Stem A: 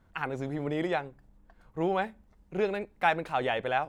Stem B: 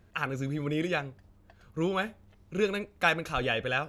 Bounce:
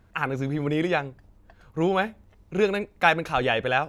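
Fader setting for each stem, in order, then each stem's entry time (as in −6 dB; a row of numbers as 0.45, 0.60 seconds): +1.0, −0.5 decibels; 0.00, 0.00 seconds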